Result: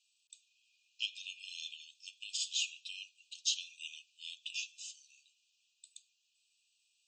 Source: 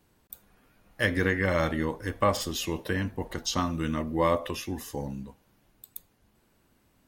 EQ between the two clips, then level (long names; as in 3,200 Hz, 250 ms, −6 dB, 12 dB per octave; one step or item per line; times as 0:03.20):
dynamic equaliser 5,400 Hz, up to −6 dB, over −51 dBFS, Q 3.6
linear-phase brick-wall band-pass 2,400–8,300 Hz
+1.0 dB